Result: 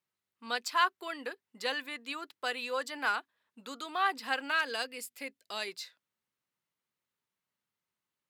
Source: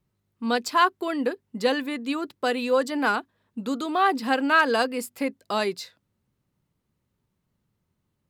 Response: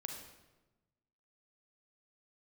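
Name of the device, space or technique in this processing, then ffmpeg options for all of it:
filter by subtraction: -filter_complex "[0:a]asplit=2[a][b];[b]lowpass=1.9k,volume=-1[c];[a][c]amix=inputs=2:normalize=0,asettb=1/sr,asplit=3[d][e][f];[d]atrim=end=4.514[g];[e]atrim=start=4.51:end=5.68,asetpts=PTS-STARTPTS,afade=t=in:d=0.004:c=qsin,afade=t=out:st=1.166:d=0.004:c=qsin,equalizer=f=1.1k:w=1.1:g=-8[h];[f]atrim=start=5.676[i];[g][h]acrossfade=d=0.004:c1=hsin:c2=qsin[j];[j][i]acrossfade=d=0.004:c1=qsin:c2=hsin,volume=-6dB"

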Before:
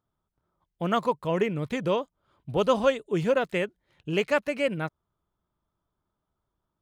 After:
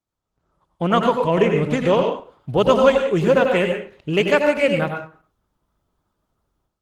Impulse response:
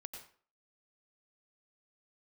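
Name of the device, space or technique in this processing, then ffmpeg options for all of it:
speakerphone in a meeting room: -filter_complex "[1:a]atrim=start_sample=2205[a];[0:a][a]afir=irnorm=-1:irlink=0,dynaudnorm=f=220:g=3:m=14.5dB" -ar 48000 -c:a libopus -b:a 16k

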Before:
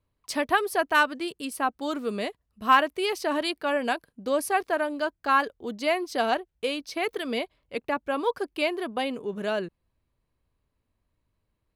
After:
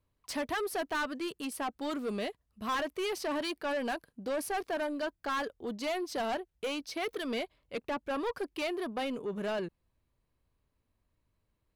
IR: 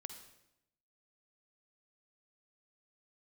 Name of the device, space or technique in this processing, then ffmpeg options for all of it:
saturation between pre-emphasis and de-emphasis: -af "highshelf=f=5.3k:g=9.5,asoftclip=type=tanh:threshold=-27.5dB,highshelf=f=5.3k:g=-9.5,volume=-1.5dB"

